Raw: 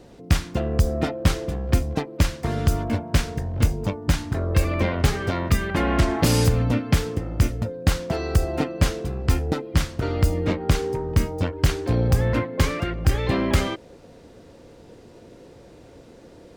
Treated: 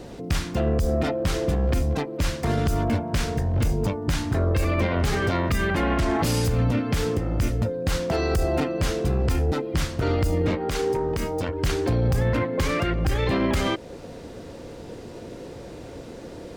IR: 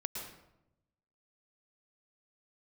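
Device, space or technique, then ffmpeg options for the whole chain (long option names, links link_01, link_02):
stacked limiters: -filter_complex "[0:a]alimiter=limit=-14dB:level=0:latency=1:release=67,alimiter=limit=-19.5dB:level=0:latency=1:release=367,alimiter=limit=-23dB:level=0:latency=1:release=12,asettb=1/sr,asplit=3[link_01][link_02][link_03];[link_01]atrim=end=10.554[link_04];[link_02]atrim=start=10.55:end=11.49,asetpts=PTS-STARTPTS,afade=type=in:duration=0.004:curve=qsin,afade=type=out:start_time=0.936:duration=0.004:curve=qsin,equalizer=frequency=81:width_type=o:width=2.8:gain=-7.5[link_05];[link_03]atrim=start=11.486[link_06];[link_04][link_05]acrossfade=duration=0.004:curve1=hsin:curve2=qsin[link_07];[link_07][link_06]acrossfade=duration=0.004:curve1=qsin:curve2=hsin,volume=8dB"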